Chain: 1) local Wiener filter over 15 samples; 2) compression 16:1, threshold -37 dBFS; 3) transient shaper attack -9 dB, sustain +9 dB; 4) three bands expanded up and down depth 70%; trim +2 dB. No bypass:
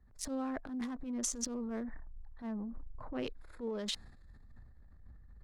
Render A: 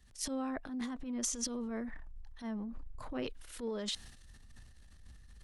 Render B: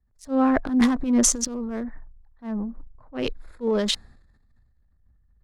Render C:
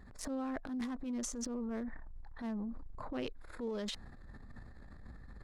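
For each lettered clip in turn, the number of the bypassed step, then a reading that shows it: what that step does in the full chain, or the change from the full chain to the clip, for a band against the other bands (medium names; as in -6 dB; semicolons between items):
1, momentary loudness spread change +7 LU; 2, mean gain reduction 7.0 dB; 4, 8 kHz band -6.0 dB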